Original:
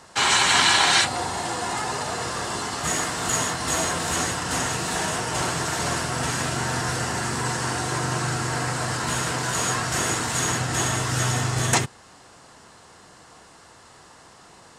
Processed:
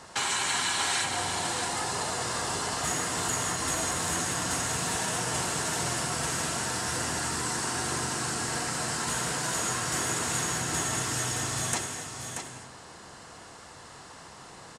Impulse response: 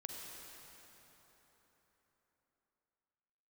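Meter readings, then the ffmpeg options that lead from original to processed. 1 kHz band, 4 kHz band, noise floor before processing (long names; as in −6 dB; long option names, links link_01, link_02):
−6.5 dB, −7.0 dB, −50 dBFS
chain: -filter_complex "[0:a]acrossover=split=3000|7800[link_01][link_02][link_03];[link_01]acompressor=threshold=-33dB:ratio=4[link_04];[link_02]acompressor=threshold=-39dB:ratio=4[link_05];[link_03]acompressor=threshold=-35dB:ratio=4[link_06];[link_04][link_05][link_06]amix=inputs=3:normalize=0,aecho=1:1:632:0.447,asplit=2[link_07][link_08];[1:a]atrim=start_sample=2205,atrim=end_sample=6174,asetrate=23373,aresample=44100[link_09];[link_08][link_09]afir=irnorm=-1:irlink=0,volume=2.5dB[link_10];[link_07][link_10]amix=inputs=2:normalize=0,volume=-5.5dB"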